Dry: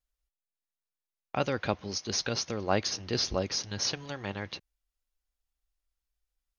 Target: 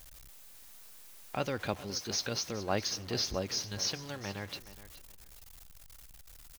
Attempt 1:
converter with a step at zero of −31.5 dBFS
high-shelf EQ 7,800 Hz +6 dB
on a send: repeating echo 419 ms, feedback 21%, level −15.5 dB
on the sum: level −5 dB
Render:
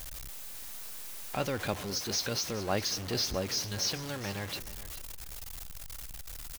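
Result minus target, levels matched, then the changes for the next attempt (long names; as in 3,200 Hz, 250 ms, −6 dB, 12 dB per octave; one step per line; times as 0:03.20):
converter with a step at zero: distortion +9 dB
change: converter with a step at zero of −42 dBFS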